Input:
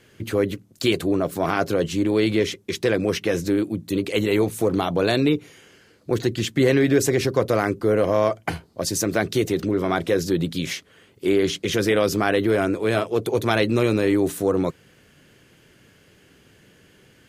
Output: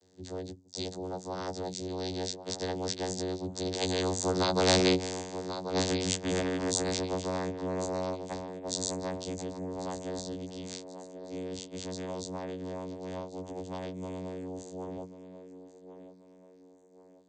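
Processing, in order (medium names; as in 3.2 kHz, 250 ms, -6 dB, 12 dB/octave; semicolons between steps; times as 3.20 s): partials quantised in pitch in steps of 6 st; Doppler pass-by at 4.88 s, 28 m/s, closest 7 m; vocoder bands 16, saw 92 Hz; high-order bell 1.9 kHz -15.5 dB; on a send: thinning echo 1087 ms, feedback 41%, high-pass 180 Hz, level -17 dB; on the sum: spectrum-flattening compressor 2:1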